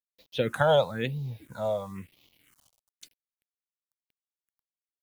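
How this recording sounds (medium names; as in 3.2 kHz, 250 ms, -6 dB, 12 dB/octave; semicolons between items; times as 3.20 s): a quantiser's noise floor 10-bit, dither none; phasing stages 4, 1 Hz, lowest notch 290–1600 Hz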